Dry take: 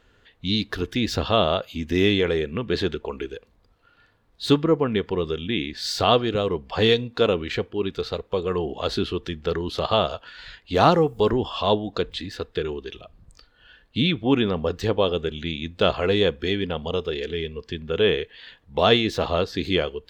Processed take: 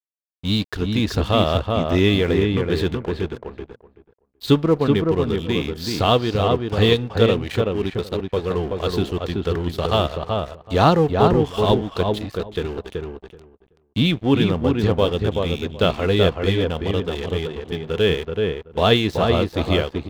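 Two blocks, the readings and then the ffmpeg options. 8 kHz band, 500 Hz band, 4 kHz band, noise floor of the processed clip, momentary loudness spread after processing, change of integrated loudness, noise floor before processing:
can't be measured, +2.5 dB, +0.5 dB, −62 dBFS, 10 LU, +3.0 dB, −61 dBFS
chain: -filter_complex "[0:a]equalizer=frequency=80:width=0.52:gain=7.5,aeval=exprs='sgn(val(0))*max(abs(val(0))-0.0158,0)':channel_layout=same,asplit=2[link_01][link_02];[link_02]adelay=379,lowpass=frequency=1800:poles=1,volume=-3dB,asplit=2[link_03][link_04];[link_04]adelay=379,lowpass=frequency=1800:poles=1,volume=0.16,asplit=2[link_05][link_06];[link_06]adelay=379,lowpass=frequency=1800:poles=1,volume=0.16[link_07];[link_03][link_05][link_07]amix=inputs=3:normalize=0[link_08];[link_01][link_08]amix=inputs=2:normalize=0,volume=1dB"

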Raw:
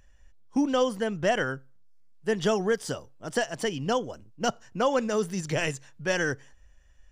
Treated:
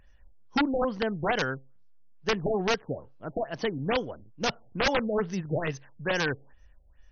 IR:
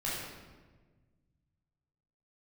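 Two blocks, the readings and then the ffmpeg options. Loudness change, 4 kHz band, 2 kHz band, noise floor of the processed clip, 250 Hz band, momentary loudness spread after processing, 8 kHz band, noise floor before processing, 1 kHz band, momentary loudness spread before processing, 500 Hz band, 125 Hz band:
−1.0 dB, +1.0 dB, 0.0 dB, −56 dBFS, −1.5 dB, 9 LU, −6.5 dB, −56 dBFS, −0.5 dB, 9 LU, −2.5 dB, 0.0 dB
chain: -af "aeval=exprs='(mod(7.5*val(0)+1,2)-1)/7.5':channel_layout=same,afftfilt=real='re*lt(b*sr/1024,790*pow(6700/790,0.5+0.5*sin(2*PI*2.3*pts/sr)))':imag='im*lt(b*sr/1024,790*pow(6700/790,0.5+0.5*sin(2*PI*2.3*pts/sr)))':win_size=1024:overlap=0.75"

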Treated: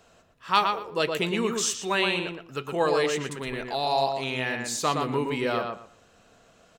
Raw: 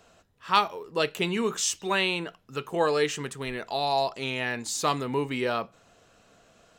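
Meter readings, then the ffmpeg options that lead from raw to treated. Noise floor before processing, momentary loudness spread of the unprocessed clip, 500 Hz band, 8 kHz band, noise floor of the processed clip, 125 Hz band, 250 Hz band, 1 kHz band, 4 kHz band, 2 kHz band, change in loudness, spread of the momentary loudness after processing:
−61 dBFS, 9 LU, +1.5 dB, +0.5 dB, −59 dBFS, +1.5 dB, +1.5 dB, +1.5 dB, +0.5 dB, +1.0 dB, +1.0 dB, 9 LU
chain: -filter_complex "[0:a]asplit=2[link_01][link_02];[link_02]adelay=117,lowpass=frequency=2800:poles=1,volume=-4dB,asplit=2[link_03][link_04];[link_04]adelay=117,lowpass=frequency=2800:poles=1,volume=0.22,asplit=2[link_05][link_06];[link_06]adelay=117,lowpass=frequency=2800:poles=1,volume=0.22[link_07];[link_01][link_03][link_05][link_07]amix=inputs=4:normalize=0"

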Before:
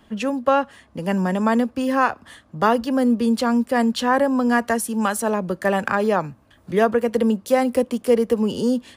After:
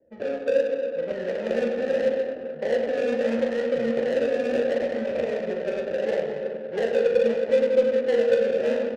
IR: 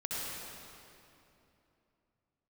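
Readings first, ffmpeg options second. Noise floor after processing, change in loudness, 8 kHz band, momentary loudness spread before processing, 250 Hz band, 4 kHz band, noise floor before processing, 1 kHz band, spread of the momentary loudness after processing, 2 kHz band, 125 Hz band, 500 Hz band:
−35 dBFS, −4.0 dB, below −15 dB, 5 LU, −11.5 dB, −7.0 dB, −55 dBFS, −17.5 dB, 8 LU, −7.5 dB, −13.5 dB, +0.5 dB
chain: -filter_complex "[0:a]firequalizer=gain_entry='entry(490,0);entry(1300,-20);entry(1900,7);entry(5900,-1);entry(12000,8)':delay=0.05:min_phase=1,acrusher=samples=35:mix=1:aa=0.000001:lfo=1:lforange=21:lforate=0.74,asplit=3[link_01][link_02][link_03];[link_01]bandpass=frequency=530:width_type=q:width=8,volume=0dB[link_04];[link_02]bandpass=frequency=1840:width_type=q:width=8,volume=-6dB[link_05];[link_03]bandpass=frequency=2480:width_type=q:width=8,volume=-9dB[link_06];[link_04][link_05][link_06]amix=inputs=3:normalize=0,acrossover=split=400|3000[link_07][link_08][link_09];[link_08]acompressor=threshold=-32dB:ratio=6[link_10];[link_07][link_10][link_09]amix=inputs=3:normalize=0,lowshelf=frequency=320:gain=11.5,asplit=2[link_11][link_12];[link_12]highpass=frequency=190:width=0.5412,highpass=frequency=190:width=1.3066[link_13];[1:a]atrim=start_sample=2205,highshelf=frequency=5200:gain=10.5[link_14];[link_13][link_14]afir=irnorm=-1:irlink=0,volume=-6.5dB[link_15];[link_11][link_15]amix=inputs=2:normalize=0,aeval=exprs='0.473*(cos(1*acos(clip(val(0)/0.473,-1,1)))-cos(1*PI/2))+0.0335*(cos(5*acos(clip(val(0)/0.473,-1,1)))-cos(5*PI/2))+0.00668*(cos(6*acos(clip(val(0)/0.473,-1,1)))-cos(6*PI/2))+0.00422*(cos(8*acos(clip(val(0)/0.473,-1,1)))-cos(8*PI/2))':channel_layout=same,bandreject=frequency=50:width_type=h:width=6,bandreject=frequency=100:width_type=h:width=6,bandreject=frequency=150:width_type=h:width=6,bandreject=frequency=200:width_type=h:width=6,bandreject=frequency=250:width_type=h:width=6,bandreject=frequency=300:width_type=h:width=6,bandreject=frequency=350:width_type=h:width=6,bandreject=frequency=400:width_type=h:width=6,bandreject=frequency=450:width_type=h:width=6,asplit=2[link_16][link_17];[link_17]adelay=13,volume=-11.5dB[link_18];[link_16][link_18]amix=inputs=2:normalize=0,aecho=1:1:40|104|206.4|370.2|632.4:0.631|0.398|0.251|0.158|0.1,adynamicsmooth=sensitivity=2.5:basefreq=620,volume=-1.5dB"

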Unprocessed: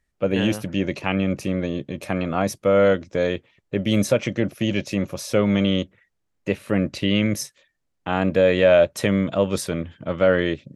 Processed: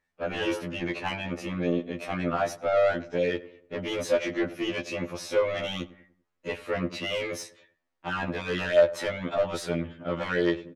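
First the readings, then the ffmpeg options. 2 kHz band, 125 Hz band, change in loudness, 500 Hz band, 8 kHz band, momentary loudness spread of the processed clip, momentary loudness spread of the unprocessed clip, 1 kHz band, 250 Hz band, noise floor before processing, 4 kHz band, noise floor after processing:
−4.0 dB, −11.5 dB, −7.0 dB, −6.0 dB, −8.5 dB, 12 LU, 11 LU, −3.5 dB, −10.0 dB, −74 dBFS, −5.5 dB, −79 dBFS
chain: -filter_complex "[0:a]asplit=2[link_01][link_02];[link_02]highpass=frequency=720:poles=1,volume=20dB,asoftclip=type=tanh:threshold=-5dB[link_03];[link_01][link_03]amix=inputs=2:normalize=0,lowpass=frequency=1700:poles=1,volume=-6dB,asplit=2[link_04][link_05];[link_05]adelay=97,lowpass=frequency=1500:poles=1,volume=-16.5dB,asplit=2[link_06][link_07];[link_07]adelay=97,lowpass=frequency=1500:poles=1,volume=0.44,asplit=2[link_08][link_09];[link_09]adelay=97,lowpass=frequency=1500:poles=1,volume=0.44,asplit=2[link_10][link_11];[link_11]adelay=97,lowpass=frequency=1500:poles=1,volume=0.44[link_12];[link_04][link_06][link_08][link_10][link_12]amix=inputs=5:normalize=0,afftfilt=real='re*2*eq(mod(b,4),0)':imag='im*2*eq(mod(b,4),0)':win_size=2048:overlap=0.75,volume=-7.5dB"

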